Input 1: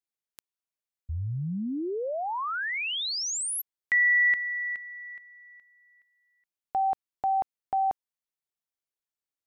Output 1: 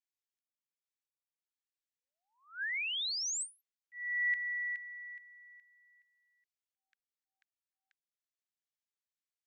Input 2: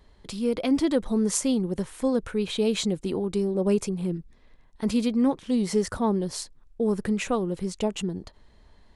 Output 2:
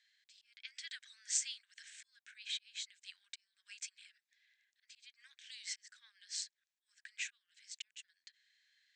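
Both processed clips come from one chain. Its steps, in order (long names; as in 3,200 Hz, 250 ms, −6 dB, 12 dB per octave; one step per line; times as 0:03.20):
volume swells 570 ms
Chebyshev band-pass filter 1,600–8,100 Hz, order 5
level −4.5 dB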